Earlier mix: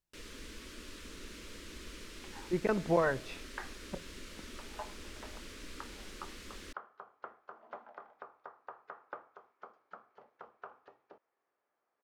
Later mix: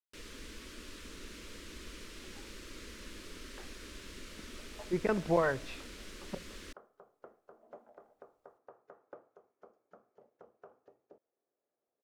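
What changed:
speech: entry +2.40 s; second sound: add band shelf 2000 Hz -14 dB 2.8 oct

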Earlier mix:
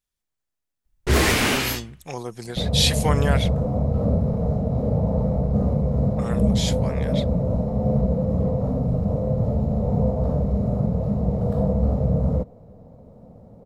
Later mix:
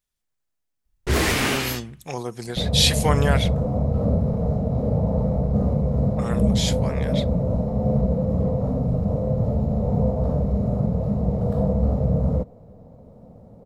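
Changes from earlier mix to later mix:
speech: send +11.5 dB; first sound: send -11.5 dB

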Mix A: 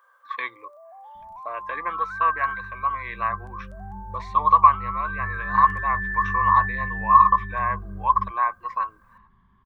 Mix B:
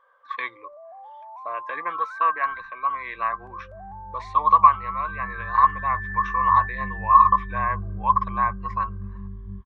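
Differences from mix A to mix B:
first sound: add tilt -5.5 dB/oct; second sound: entry +1.30 s

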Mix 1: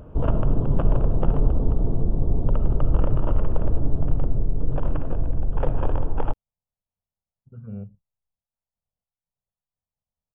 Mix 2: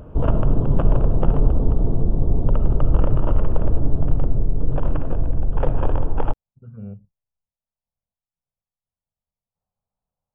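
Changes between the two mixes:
speech: entry -0.90 s; background +3.0 dB

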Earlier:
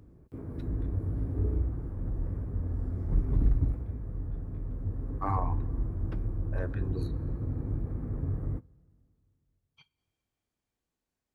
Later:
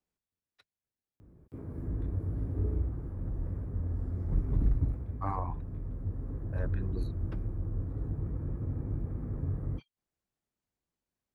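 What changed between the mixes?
background: entry +1.20 s; reverb: off

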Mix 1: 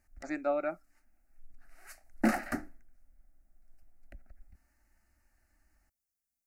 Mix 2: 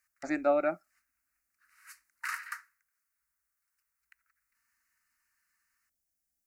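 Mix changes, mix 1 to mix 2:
speech +4.5 dB; background: add brick-wall FIR high-pass 920 Hz

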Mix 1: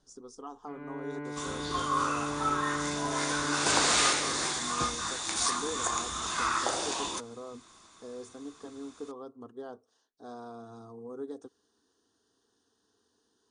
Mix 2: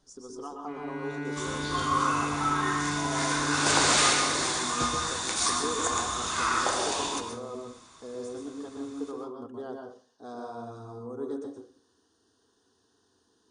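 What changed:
first sound: remove LPF 1700 Hz 12 dB/oct; reverb: on, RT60 0.40 s

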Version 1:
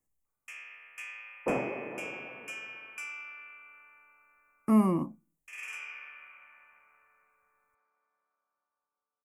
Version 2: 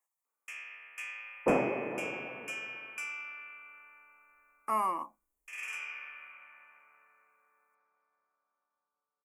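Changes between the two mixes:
speech: add resonant high-pass 940 Hz, resonance Q 2; first sound: send on; second sound +3.5 dB

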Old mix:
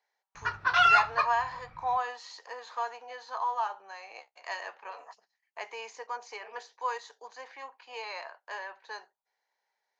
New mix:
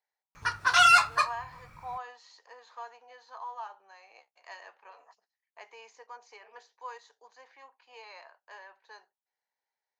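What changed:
speech -9.5 dB; background: remove air absorption 240 m

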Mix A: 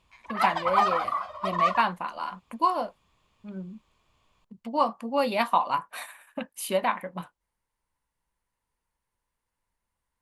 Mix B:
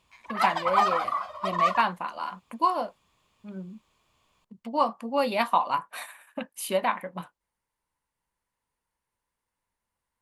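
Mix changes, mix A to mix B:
background: add high shelf 7300 Hz +8 dB; master: add low shelf 67 Hz -9 dB

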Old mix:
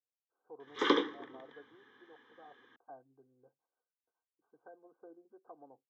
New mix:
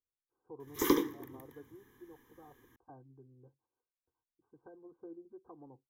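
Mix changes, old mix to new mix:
background -4.5 dB; master: remove speaker cabinet 340–3900 Hz, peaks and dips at 350 Hz -7 dB, 650 Hz +10 dB, 980 Hz -5 dB, 1400 Hz +8 dB, 2300 Hz -3 dB, 3400 Hz +7 dB

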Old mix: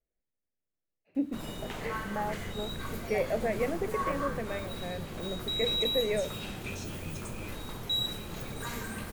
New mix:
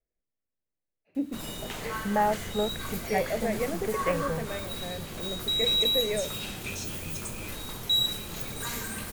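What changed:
first sound: add high shelf 3000 Hz +9.5 dB; second sound +10.0 dB

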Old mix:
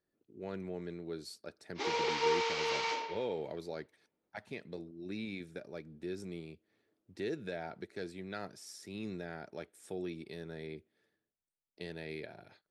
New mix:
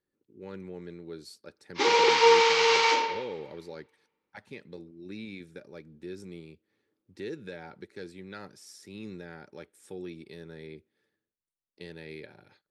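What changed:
background +12.0 dB; master: add Butterworth band-stop 670 Hz, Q 4.8

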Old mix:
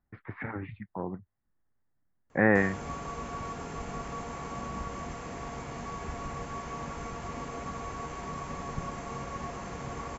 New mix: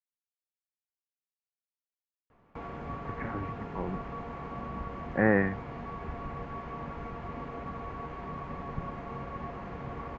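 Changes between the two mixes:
speech: entry +2.80 s; master: add air absorption 360 m

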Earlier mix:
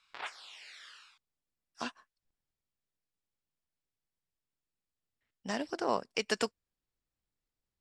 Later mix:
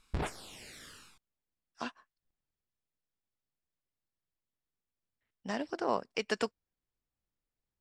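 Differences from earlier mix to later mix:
background: remove Butterworth band-pass 2000 Hz, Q 0.62; master: add high shelf 4500 Hz -8.5 dB

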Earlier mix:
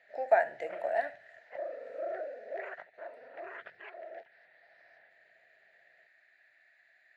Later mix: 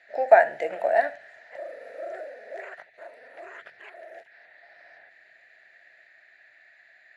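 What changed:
speech +9.5 dB; background: remove air absorption 240 m

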